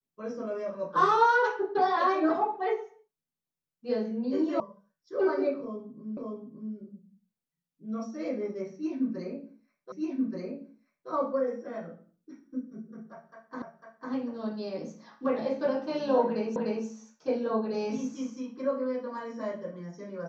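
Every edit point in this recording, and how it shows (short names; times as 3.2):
4.6 sound cut off
6.17 repeat of the last 0.57 s
9.92 repeat of the last 1.18 s
13.62 repeat of the last 0.5 s
16.56 repeat of the last 0.3 s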